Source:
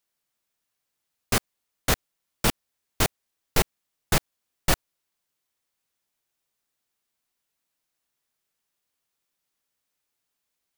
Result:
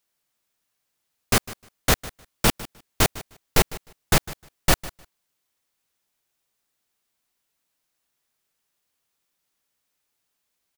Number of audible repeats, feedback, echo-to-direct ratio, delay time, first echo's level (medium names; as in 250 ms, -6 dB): 2, 16%, -18.0 dB, 153 ms, -18.0 dB